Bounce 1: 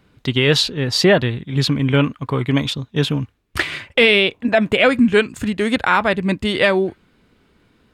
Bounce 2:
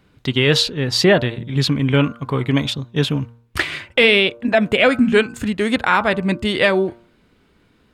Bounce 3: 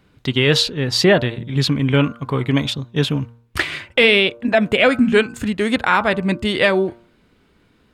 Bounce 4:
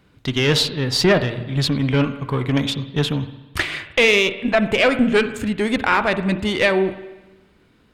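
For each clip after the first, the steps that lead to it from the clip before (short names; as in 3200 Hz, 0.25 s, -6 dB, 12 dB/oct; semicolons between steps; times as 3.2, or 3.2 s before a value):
de-hum 117.1 Hz, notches 13
nothing audible
one diode to ground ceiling -12 dBFS; spring tank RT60 1.1 s, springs 47/58 ms, chirp 50 ms, DRR 12 dB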